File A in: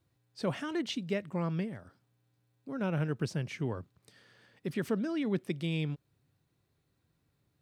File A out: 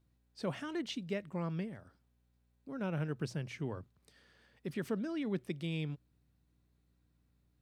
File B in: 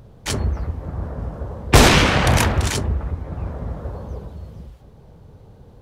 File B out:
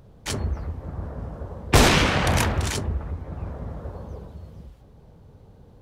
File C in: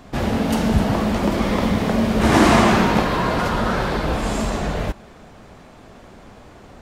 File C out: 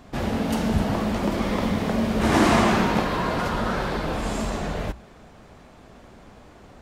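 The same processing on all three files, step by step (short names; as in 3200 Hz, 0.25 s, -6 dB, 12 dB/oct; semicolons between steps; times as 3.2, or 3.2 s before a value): notches 60/120 Hz; hum 60 Hz, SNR 33 dB; gain -4.5 dB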